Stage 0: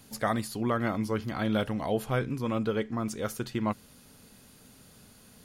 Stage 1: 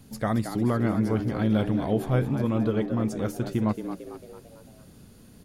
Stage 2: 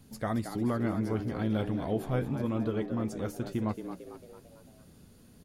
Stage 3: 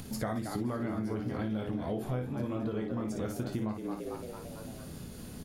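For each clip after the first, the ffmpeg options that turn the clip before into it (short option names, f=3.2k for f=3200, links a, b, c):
-filter_complex "[0:a]lowshelf=f=400:g=12,asplit=2[a][b];[b]asplit=5[c][d][e][f][g];[c]adelay=224,afreqshift=86,volume=-9.5dB[h];[d]adelay=448,afreqshift=172,volume=-15.9dB[i];[e]adelay=672,afreqshift=258,volume=-22.3dB[j];[f]adelay=896,afreqshift=344,volume=-28.6dB[k];[g]adelay=1120,afreqshift=430,volume=-35dB[l];[h][i][j][k][l]amix=inputs=5:normalize=0[m];[a][m]amix=inputs=2:normalize=0,volume=-3.5dB"
-filter_complex "[0:a]asplit=2[a][b];[b]adelay=12,volume=-12dB[c];[a][c]amix=inputs=2:normalize=0,volume=-5.5dB"
-filter_complex "[0:a]asplit=2[a][b];[b]acompressor=mode=upward:threshold=-35dB:ratio=2.5,volume=-2dB[c];[a][c]amix=inputs=2:normalize=0,aecho=1:1:24|56:0.398|0.422,acompressor=threshold=-31dB:ratio=6"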